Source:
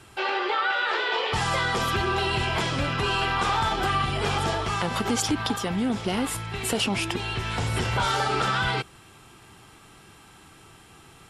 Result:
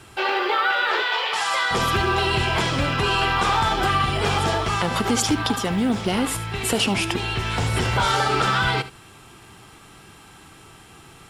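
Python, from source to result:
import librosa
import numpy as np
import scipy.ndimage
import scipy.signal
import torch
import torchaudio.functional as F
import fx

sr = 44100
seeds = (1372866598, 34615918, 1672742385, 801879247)

y = fx.highpass(x, sr, hz=740.0, slope=12, at=(1.02, 1.71))
y = fx.quant_companded(y, sr, bits=8)
y = y + 10.0 ** (-15.0 / 20.0) * np.pad(y, (int(75 * sr / 1000.0), 0))[:len(y)]
y = y * librosa.db_to_amplitude(4.0)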